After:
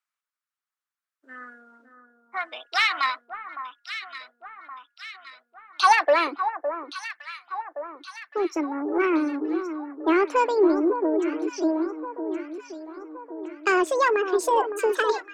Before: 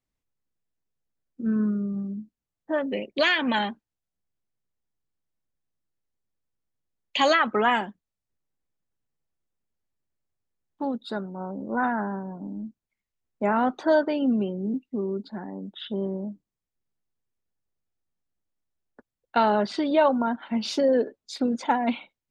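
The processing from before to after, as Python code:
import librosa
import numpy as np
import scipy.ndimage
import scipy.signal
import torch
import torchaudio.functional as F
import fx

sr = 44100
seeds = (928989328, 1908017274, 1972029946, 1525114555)

p1 = fx.speed_glide(x, sr, from_pct=110, to_pct=181)
p2 = fx.cheby_harmonics(p1, sr, harmonics=(6, 8), levels_db=(-26, -29), full_scale_db=-8.0)
p3 = fx.filter_sweep_highpass(p2, sr, from_hz=1300.0, to_hz=310.0, start_s=5.75, end_s=6.37, q=3.2)
p4 = 10.0 ** (-16.0 / 20.0) * np.tanh(p3 / 10.0 ** (-16.0 / 20.0))
p5 = p3 + (p4 * librosa.db_to_amplitude(-8.5))
p6 = fx.echo_alternate(p5, sr, ms=560, hz=1400.0, feedback_pct=71, wet_db=-8.5)
y = p6 * librosa.db_to_amplitude(-4.0)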